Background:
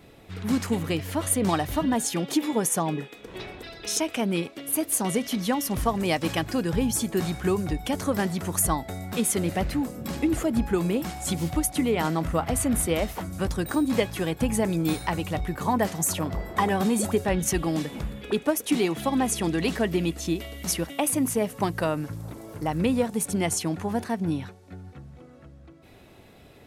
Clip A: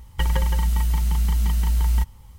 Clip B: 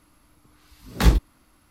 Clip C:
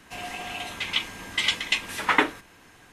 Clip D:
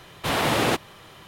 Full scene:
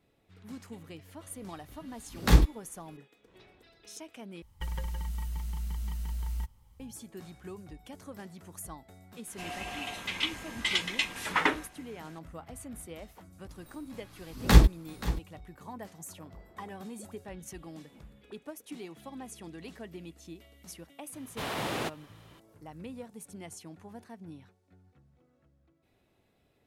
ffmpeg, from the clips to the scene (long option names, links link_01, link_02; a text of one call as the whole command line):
ffmpeg -i bed.wav -i cue0.wav -i cue1.wav -i cue2.wav -i cue3.wav -filter_complex "[2:a]asplit=2[link_01][link_02];[0:a]volume=-19.5dB[link_03];[3:a]acontrast=69[link_04];[link_02]aecho=1:1:529:0.188[link_05];[link_03]asplit=2[link_06][link_07];[link_06]atrim=end=4.424[link_08];[1:a]atrim=end=2.38,asetpts=PTS-STARTPTS,volume=-14.5dB[link_09];[link_07]atrim=start=6.796[link_10];[link_01]atrim=end=1.7,asetpts=PTS-STARTPTS,volume=-3dB,afade=type=in:duration=0.004:curve=hsin,afade=type=out:start_time=1.696:duration=0.004:curve=hsin,adelay=1270[link_11];[link_04]atrim=end=2.92,asetpts=PTS-STARTPTS,volume=-11dB,afade=type=in:duration=0.004:curve=hsin,afade=type=out:start_time=2.916:duration=0.004:curve=hsin,adelay=9270[link_12];[link_05]atrim=end=1.7,asetpts=PTS-STARTPTS,volume=-0.5dB,afade=type=in:duration=0.004:curve=hsin,afade=type=out:start_time=1.696:duration=0.004:curve=hsin,adelay=13490[link_13];[4:a]atrim=end=1.27,asetpts=PTS-STARTPTS,volume=-11.5dB,afade=type=in:duration=0.004:curve=hsin,afade=type=out:start_time=1.266:duration=0.004:curve=hsin,adelay=21130[link_14];[link_08][link_09]acrossfade=duration=0.004:curve1=hsin:curve2=hsin[link_15];[link_15][link_10]acrossfade=duration=0.004:curve1=hsin:curve2=hsin[link_16];[link_16][link_11][link_12][link_13][link_14]amix=inputs=5:normalize=0" out.wav